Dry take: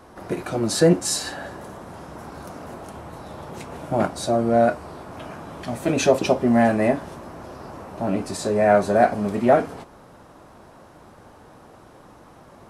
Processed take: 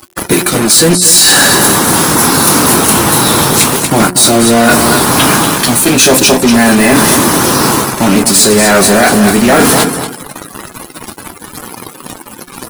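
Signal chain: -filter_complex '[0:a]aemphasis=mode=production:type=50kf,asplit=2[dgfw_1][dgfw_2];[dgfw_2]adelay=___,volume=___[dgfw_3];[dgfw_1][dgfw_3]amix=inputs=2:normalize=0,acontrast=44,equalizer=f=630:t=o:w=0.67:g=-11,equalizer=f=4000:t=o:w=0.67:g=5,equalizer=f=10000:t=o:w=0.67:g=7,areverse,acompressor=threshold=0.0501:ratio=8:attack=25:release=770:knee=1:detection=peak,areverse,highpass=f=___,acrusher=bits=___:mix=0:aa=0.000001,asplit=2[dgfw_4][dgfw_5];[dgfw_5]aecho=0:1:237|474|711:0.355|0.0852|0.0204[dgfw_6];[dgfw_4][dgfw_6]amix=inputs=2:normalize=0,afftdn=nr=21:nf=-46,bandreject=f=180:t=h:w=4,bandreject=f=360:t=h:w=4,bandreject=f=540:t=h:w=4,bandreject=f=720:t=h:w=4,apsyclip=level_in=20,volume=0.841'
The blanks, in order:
23, 0.2, 140, 5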